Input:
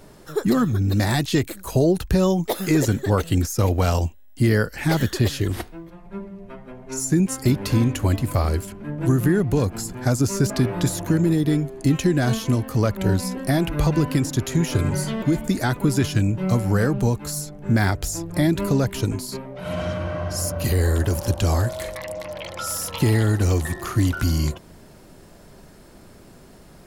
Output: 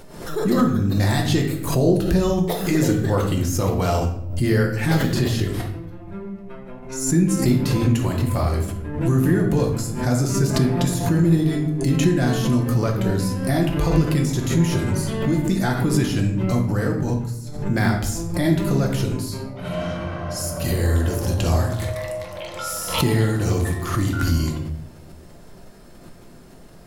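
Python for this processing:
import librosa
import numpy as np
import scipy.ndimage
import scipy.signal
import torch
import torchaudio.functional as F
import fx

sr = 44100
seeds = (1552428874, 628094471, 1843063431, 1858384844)

y = fx.level_steps(x, sr, step_db=21, at=(16.59, 17.47))
y = fx.room_shoebox(y, sr, seeds[0], volume_m3=180.0, walls='mixed', distance_m=0.88)
y = fx.pre_swell(y, sr, db_per_s=74.0)
y = y * librosa.db_to_amplitude(-3.0)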